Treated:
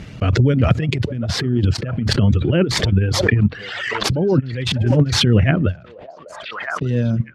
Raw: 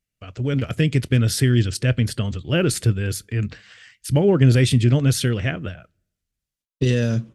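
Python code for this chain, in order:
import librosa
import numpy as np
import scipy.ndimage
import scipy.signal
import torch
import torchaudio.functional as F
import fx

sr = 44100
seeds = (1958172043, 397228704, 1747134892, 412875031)

y = scipy.ndimage.median_filter(x, 5, mode='constant')
y = fx.tilt_eq(y, sr, slope=-2.5)
y = fx.over_compress(y, sr, threshold_db=-17.0, ratio=-0.5)
y = fx.echo_stepped(y, sr, ms=596, hz=710.0, octaves=0.7, feedback_pct=70, wet_db=-12)
y = fx.dereverb_blind(y, sr, rt60_s=1.7)
y = fx.bandpass_edges(y, sr, low_hz=100.0, high_hz=7800.0)
y = fx.pre_swell(y, sr, db_per_s=31.0)
y = F.gain(torch.from_numpy(y), 3.0).numpy()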